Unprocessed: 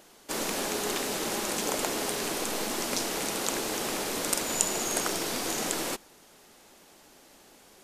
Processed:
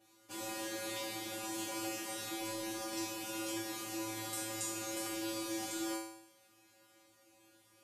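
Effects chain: feedback comb 110 Hz, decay 0.74 s, harmonics odd, mix 100%; small resonant body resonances 210/2400 Hz, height 10 dB, ringing for 40 ms; trim +6 dB

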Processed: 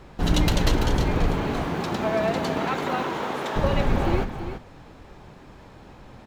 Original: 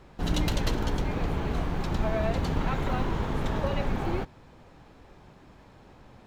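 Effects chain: 1.32–3.55 s: high-pass 130 Hz -> 410 Hz 12 dB/octave; delay 335 ms -9.5 dB; trim +6 dB

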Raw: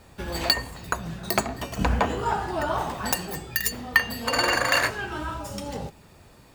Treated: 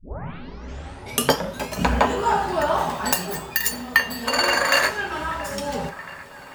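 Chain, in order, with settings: tape start-up on the opening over 1.86 s; bass shelf 150 Hz -9 dB; feedback echo behind a band-pass 677 ms, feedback 63%, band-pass 1.3 kHz, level -18 dB; gain riding within 3 dB 2 s; on a send at -6 dB: reverberation, pre-delay 3 ms; on the sum: trim +3 dB

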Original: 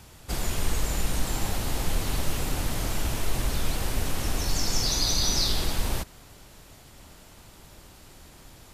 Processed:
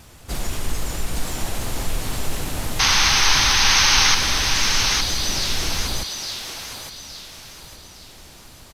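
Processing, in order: in parallel at 0 dB: peak limiter -23.5 dBFS, peak gain reduction 11 dB; on the sum: companded quantiser 8-bit; harmony voices -4 st -5 dB, +5 st -17 dB; vibrato 6.3 Hz 49 cents; painted sound noise, 2.79–4.15 s, 750–6500 Hz -14 dBFS; on a send: thinning echo 863 ms, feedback 39%, high-pass 670 Hz, level -4 dB; on the sum: trim -3.5 dB

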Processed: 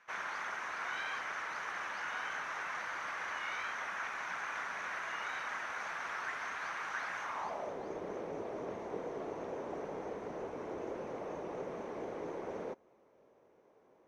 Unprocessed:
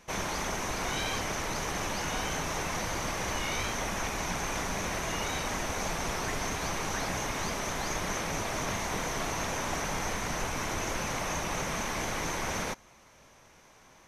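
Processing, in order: band-pass sweep 1.5 kHz -> 430 Hz, 7.20–7.79 s; trim +1 dB

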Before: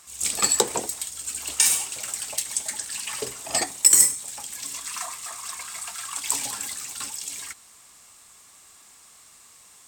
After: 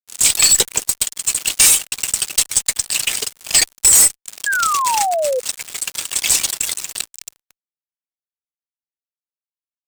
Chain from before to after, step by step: reverb removal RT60 0.67 s; resonant high shelf 1.7 kHz +13.5 dB, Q 1.5, from 7.01 s +6.5 dB; fuzz box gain 12 dB, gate -21 dBFS; 4.46–5.40 s: painted sound fall 490–1700 Hz -24 dBFS; trim +6 dB

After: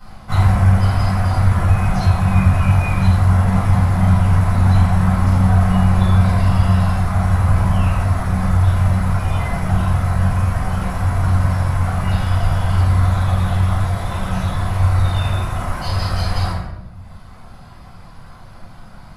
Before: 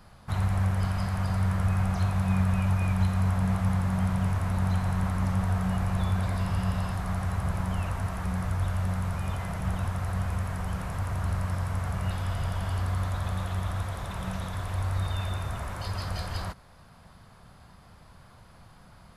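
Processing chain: reverb removal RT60 1.5 s; simulated room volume 400 m³, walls mixed, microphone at 7 m; trim -1 dB

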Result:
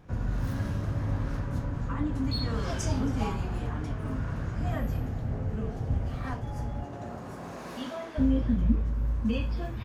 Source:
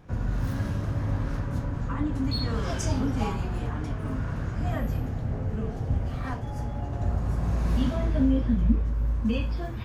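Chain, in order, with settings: 6.82–8.17 s: high-pass 160 Hz -> 530 Hz 12 dB/octave; on a send: delay 271 ms -21 dB; on the sum: trim -2 dB

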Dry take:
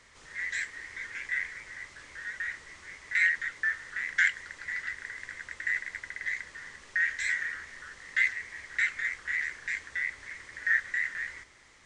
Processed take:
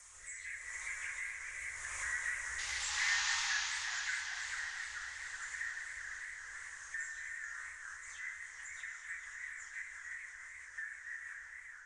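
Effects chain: delay that grows with frequency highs early, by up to 267 ms; Doppler pass-by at 2.63 s, 12 m/s, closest 3.5 m; FFT filter 110 Hz 0 dB, 190 Hz -22 dB, 1.1 kHz +5 dB, 4.6 kHz -7 dB, 6.7 kHz +10 dB; compression 3:1, threshold -59 dBFS, peak gain reduction 23 dB; painted sound noise, 2.58–3.70 s, 780–7100 Hz -56 dBFS; rotary cabinet horn 0.85 Hz, later 6 Hz, at 7.27 s; Schroeder reverb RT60 3.2 s, combs from 30 ms, DRR 4 dB; modulated delay 437 ms, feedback 64%, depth 152 cents, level -8 dB; trim +18 dB

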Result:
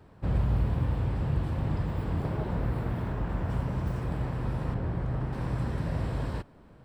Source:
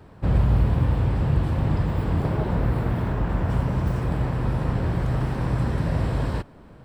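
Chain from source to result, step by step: 4.74–5.33 s: treble shelf 3.1 kHz -11 dB; trim -7 dB

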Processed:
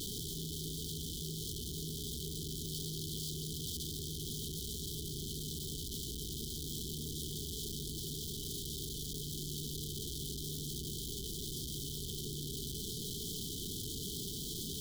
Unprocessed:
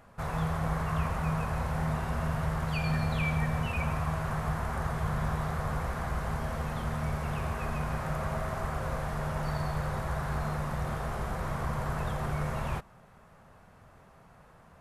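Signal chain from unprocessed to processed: one-bit comparator; brick-wall FIR band-stop 450–3000 Hz; bass shelf 280 Hz -9.5 dB; trim -2 dB

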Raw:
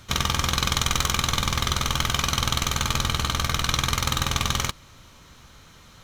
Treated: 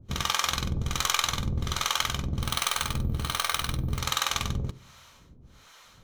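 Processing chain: harmonic tremolo 1.3 Hz, depth 100%, crossover 490 Hz; on a send at -20 dB: reverberation, pre-delay 47 ms; 2.42–3.99 s: on the sum: careless resampling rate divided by 3×, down filtered, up hold

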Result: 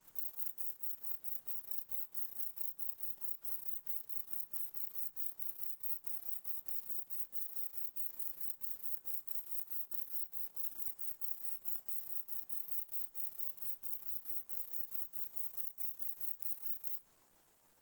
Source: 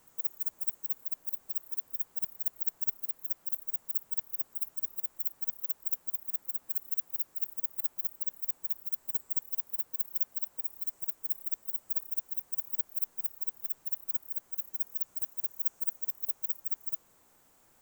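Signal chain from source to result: short-time spectra conjugated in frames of 65 ms; compression 10:1, threshold -36 dBFS, peak gain reduction 9 dB; waveshaping leveller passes 2; on a send at -11.5 dB: reverberation RT60 0.30 s, pre-delay 3 ms; on the sum: Opus 16 kbps 48 kHz

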